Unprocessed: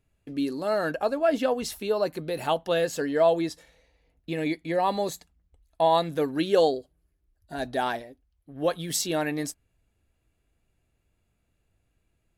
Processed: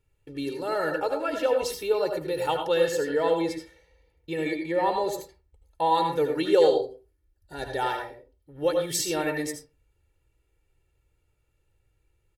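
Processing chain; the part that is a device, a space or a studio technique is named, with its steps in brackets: 4.71–5.13 s: treble shelf 5.5 kHz -7.5 dB; microphone above a desk (comb 2.2 ms, depth 84%; reverberation RT60 0.30 s, pre-delay 73 ms, DRR 3.5 dB); trim -3 dB

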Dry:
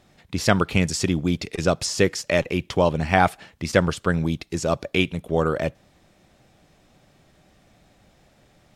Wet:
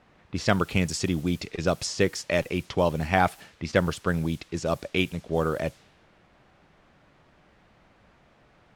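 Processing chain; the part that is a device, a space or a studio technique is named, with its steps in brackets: cassette deck with a dynamic noise filter (white noise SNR 24 dB; level-controlled noise filter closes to 1.6 kHz, open at -18.5 dBFS); trim -4 dB

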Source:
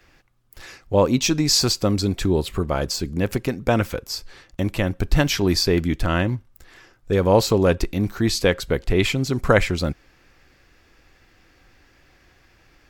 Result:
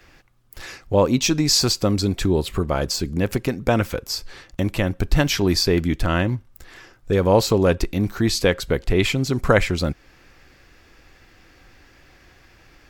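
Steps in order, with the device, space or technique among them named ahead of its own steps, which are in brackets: parallel compression (in parallel at -1.5 dB: compression, threshold -30 dBFS, peak gain reduction 18.5 dB); on the sum: trim -1 dB

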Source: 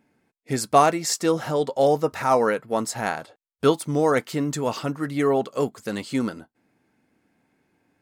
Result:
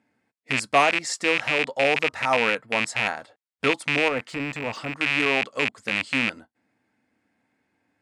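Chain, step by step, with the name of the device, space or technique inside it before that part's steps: car door speaker with a rattle (rattle on loud lows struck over -34 dBFS, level -8 dBFS; cabinet simulation 80–9300 Hz, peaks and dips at 160 Hz -9 dB, 380 Hz -7 dB, 1.9 kHz +4 dB, 6.2 kHz -3 dB); 4.08–4.97 s: de-esser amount 85%; trim -3 dB

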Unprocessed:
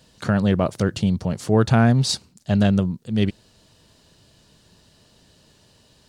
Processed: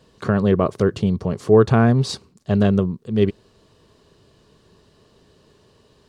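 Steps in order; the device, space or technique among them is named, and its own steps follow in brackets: inside a helmet (treble shelf 3.8 kHz -9 dB; small resonant body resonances 410/1100 Hz, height 10 dB, ringing for 30 ms)

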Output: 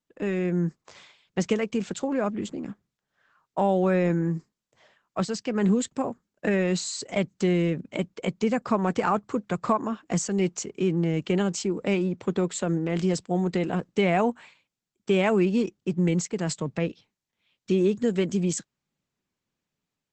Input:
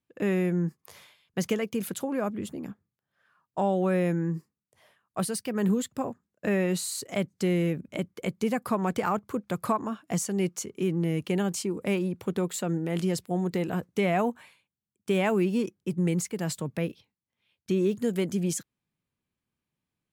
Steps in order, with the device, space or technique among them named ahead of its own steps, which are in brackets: video call (high-pass 120 Hz 12 dB/octave; level rider gain up to 4.5 dB; trim -1 dB; Opus 12 kbps 48 kHz)

